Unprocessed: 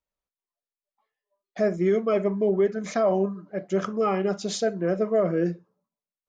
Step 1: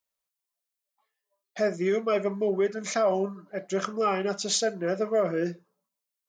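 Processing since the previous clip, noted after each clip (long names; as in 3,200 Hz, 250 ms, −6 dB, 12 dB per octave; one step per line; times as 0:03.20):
spectral tilt +2.5 dB per octave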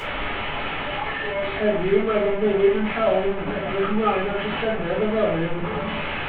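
linear delta modulator 16 kbit/s, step −24.5 dBFS
rectangular room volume 310 cubic metres, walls furnished, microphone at 4.1 metres
level −3.5 dB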